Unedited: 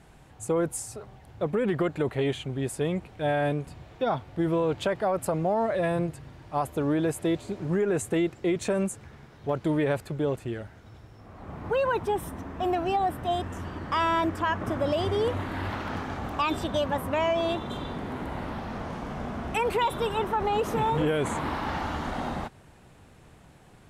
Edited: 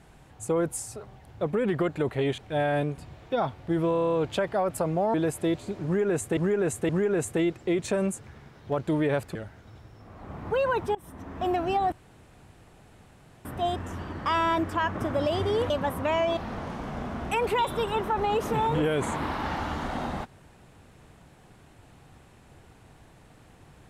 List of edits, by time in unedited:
0:02.38–0:03.07: remove
0:04.61: stutter 0.03 s, 8 plays
0:05.62–0:06.95: remove
0:07.66–0:08.18: repeat, 3 plays
0:10.12–0:10.54: remove
0:12.14–0:12.57: fade in, from −23 dB
0:13.11: splice in room tone 1.53 s
0:15.36–0:16.78: remove
0:17.45–0:18.60: remove

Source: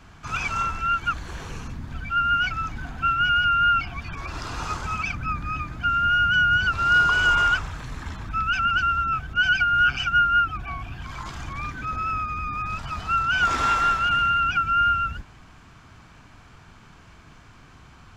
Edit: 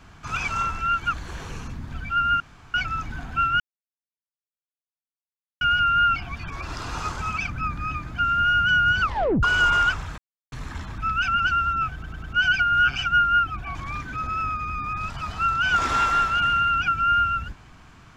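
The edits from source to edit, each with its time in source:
0:02.40: splice in room tone 0.34 s
0:03.26: splice in silence 2.01 s
0:06.67: tape stop 0.41 s
0:07.83: splice in silence 0.34 s
0:09.25: stutter 0.10 s, 4 plays
0:10.76–0:11.44: remove

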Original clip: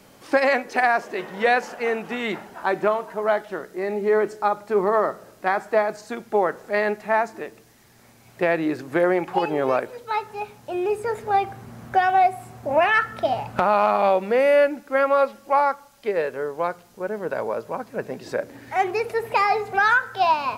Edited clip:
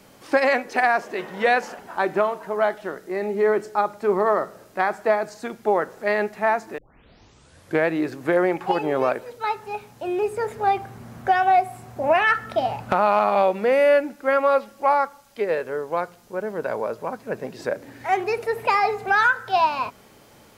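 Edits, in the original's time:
0:01.79–0:02.46: remove
0:07.45: tape start 1.10 s

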